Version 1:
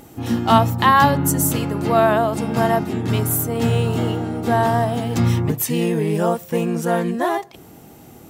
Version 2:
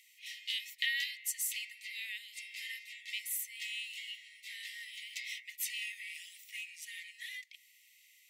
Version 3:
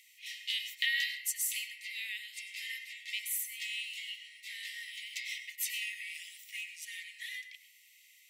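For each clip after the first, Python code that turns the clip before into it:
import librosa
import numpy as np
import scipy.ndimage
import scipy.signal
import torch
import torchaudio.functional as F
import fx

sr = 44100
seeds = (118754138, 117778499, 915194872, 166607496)

y1 = scipy.signal.sosfilt(scipy.signal.cheby1(10, 1.0, 1900.0, 'highpass', fs=sr, output='sos'), x)
y1 = fx.tilt_eq(y1, sr, slope=-4.5)
y1 = F.gain(torch.from_numpy(y1), 1.0).numpy()
y2 = np.clip(y1, -10.0 ** (-18.5 / 20.0), 10.0 ** (-18.5 / 20.0))
y2 = fx.rev_plate(y2, sr, seeds[0], rt60_s=0.57, hf_ratio=0.45, predelay_ms=85, drr_db=8.5)
y2 = F.gain(torch.from_numpy(y2), 2.0).numpy()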